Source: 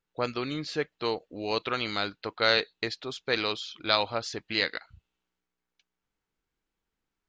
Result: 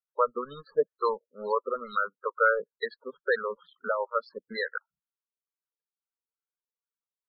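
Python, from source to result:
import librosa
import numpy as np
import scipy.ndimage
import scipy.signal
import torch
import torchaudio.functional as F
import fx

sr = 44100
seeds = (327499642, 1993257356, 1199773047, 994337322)

y = fx.weighting(x, sr, curve='A')
y = fx.transient(y, sr, attack_db=7, sustain_db=-3)
y = fx.leveller(y, sr, passes=3)
y = fx.fixed_phaser(y, sr, hz=480.0, stages=8)
y = fx.filter_lfo_lowpass(y, sr, shape='sine', hz=2.2, low_hz=660.0, high_hz=3200.0, q=1.2)
y = fx.spec_topn(y, sr, count=16)
y = y * librosa.db_to_amplitude(-7.0)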